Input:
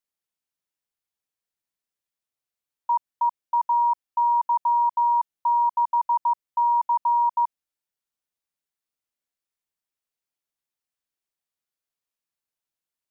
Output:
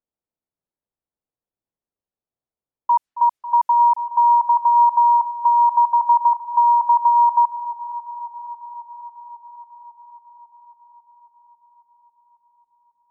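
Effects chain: low-pass opened by the level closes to 730 Hz, open at -21.5 dBFS; echo with dull and thin repeats by turns 0.273 s, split 950 Hz, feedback 81%, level -10.5 dB; gain +6 dB

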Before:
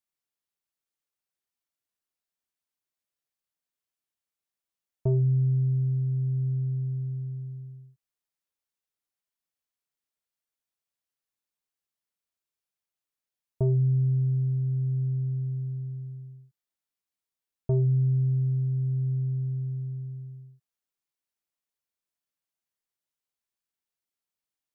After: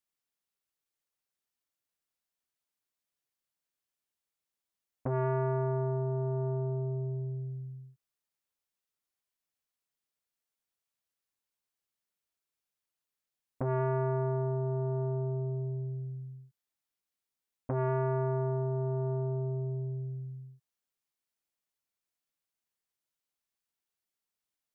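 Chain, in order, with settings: core saturation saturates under 610 Hz

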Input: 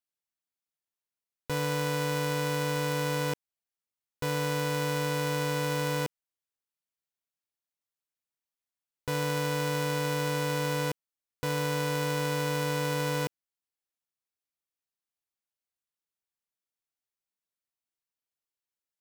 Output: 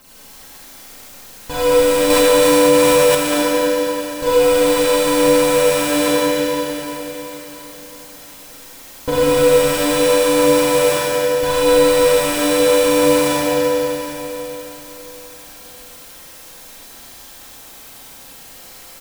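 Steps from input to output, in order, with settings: zero-crossing step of -46 dBFS; comb 3.8 ms, depth 83%; phaser 0.77 Hz, delay 3.5 ms, feedback 58%; in parallel at -11 dB: decimation with a swept rate 19×, swing 60% 2.3 Hz; on the sum: outdoor echo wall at 44 m, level -8 dB; Schroeder reverb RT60 3.9 s, combs from 33 ms, DRR -9.5 dB; 2.1–3.15 fast leveller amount 70%; gain +1.5 dB

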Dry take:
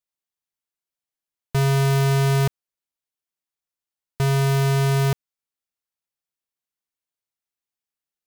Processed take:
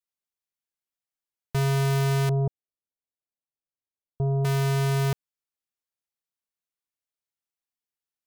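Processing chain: 2.29–4.45 inverse Chebyshev low-pass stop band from 2000 Hz, stop band 50 dB; gain -4.5 dB

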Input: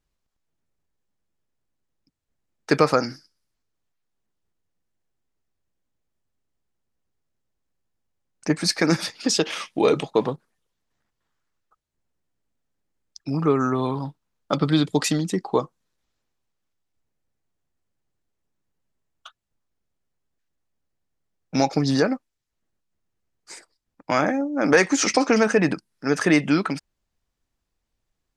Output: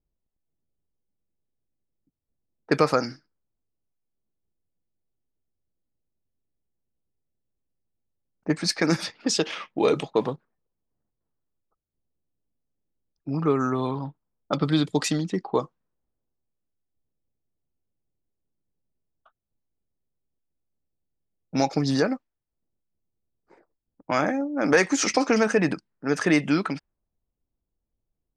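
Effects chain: low-pass opened by the level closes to 580 Hz, open at -17 dBFS; gain -2.5 dB

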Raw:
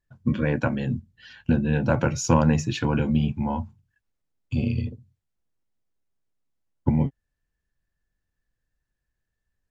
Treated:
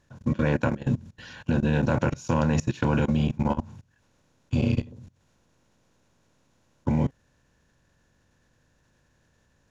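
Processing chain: per-bin compression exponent 0.6; level quantiser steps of 22 dB

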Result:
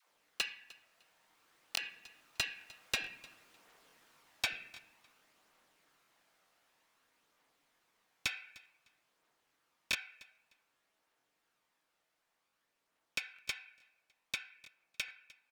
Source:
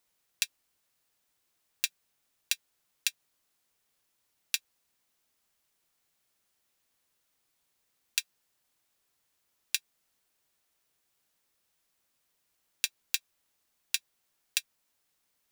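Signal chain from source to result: Doppler pass-by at 3.23, 19 m/s, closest 22 m; compressor, threshold -34 dBFS, peak gain reduction 10 dB; on a send at -3 dB: LPF 2200 Hz 12 dB/oct + reverb RT60 0.70 s, pre-delay 3 ms; on the sum: phaser 0.54 Hz, delay 1.6 ms, feedback 24%; dispersion lows, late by 98 ms, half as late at 450 Hz; overdrive pedal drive 23 dB, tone 1300 Hz, clips at -16.5 dBFS; feedback echo 0.303 s, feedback 20%, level -21.5 dB; crackling interface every 0.43 s, samples 1024, repeat, from 0.87; gain +5 dB

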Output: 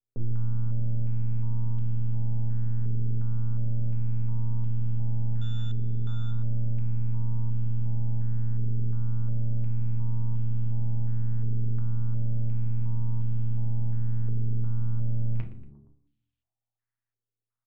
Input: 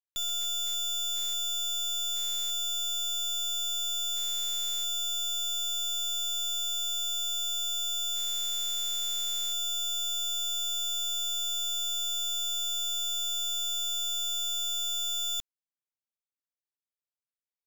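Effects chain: 5.41–6.31 HPF 76 Hz 12 dB/oct; ring modulator 58 Hz; full-wave rectifier; frequency-shifting echo 0.117 s, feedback 48%, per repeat +71 Hz, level -17.5 dB; reverb RT60 0.55 s, pre-delay 7 ms, DRR 2 dB; stepped low-pass 2.8 Hz 430–3200 Hz; gain +1.5 dB

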